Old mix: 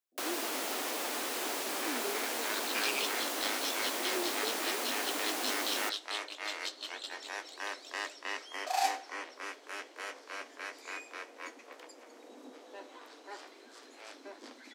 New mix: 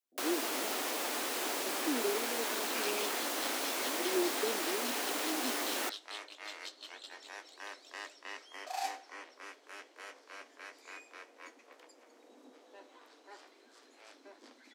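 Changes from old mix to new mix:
speech +6.0 dB; second sound -7.0 dB

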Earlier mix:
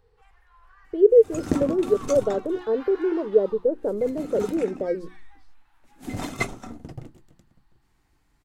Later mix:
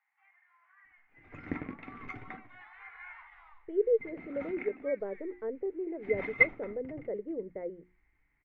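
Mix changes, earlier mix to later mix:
speech: entry +2.75 s; master: add four-pole ladder low-pass 2.2 kHz, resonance 85%

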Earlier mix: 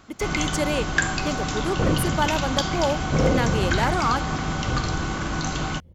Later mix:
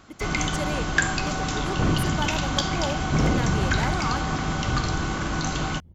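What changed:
speech -7.0 dB; second sound: add peaking EQ 520 Hz -13 dB 0.33 oct

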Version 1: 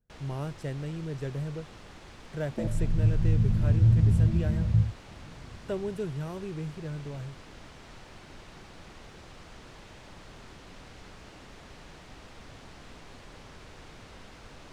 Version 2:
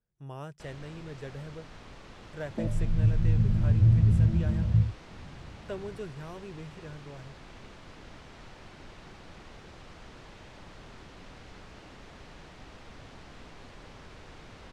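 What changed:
speech: add bass shelf 470 Hz -9.5 dB; first sound: entry +0.50 s; master: add treble shelf 8.4 kHz -10 dB

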